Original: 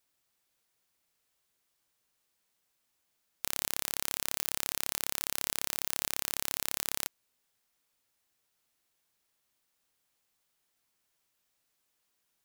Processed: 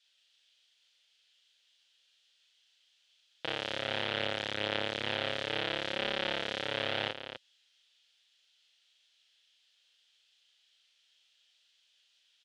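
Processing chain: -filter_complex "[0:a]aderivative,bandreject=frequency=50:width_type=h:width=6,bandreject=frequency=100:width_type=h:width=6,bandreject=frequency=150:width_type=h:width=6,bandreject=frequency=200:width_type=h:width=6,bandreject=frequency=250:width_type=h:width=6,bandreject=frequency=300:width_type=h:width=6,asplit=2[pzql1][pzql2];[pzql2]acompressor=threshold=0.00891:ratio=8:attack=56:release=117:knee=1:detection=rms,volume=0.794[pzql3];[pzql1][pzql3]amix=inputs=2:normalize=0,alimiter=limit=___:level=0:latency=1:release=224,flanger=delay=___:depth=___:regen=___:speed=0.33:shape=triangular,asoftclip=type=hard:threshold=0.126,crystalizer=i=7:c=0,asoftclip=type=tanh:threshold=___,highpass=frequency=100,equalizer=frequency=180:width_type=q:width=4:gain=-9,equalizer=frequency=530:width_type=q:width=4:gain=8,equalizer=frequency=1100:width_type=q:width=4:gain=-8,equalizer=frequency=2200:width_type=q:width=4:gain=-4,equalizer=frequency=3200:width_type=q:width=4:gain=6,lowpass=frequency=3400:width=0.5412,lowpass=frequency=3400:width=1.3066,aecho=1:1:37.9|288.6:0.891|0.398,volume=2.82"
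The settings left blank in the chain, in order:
0.398, 4.9, 4.7, -35, 0.335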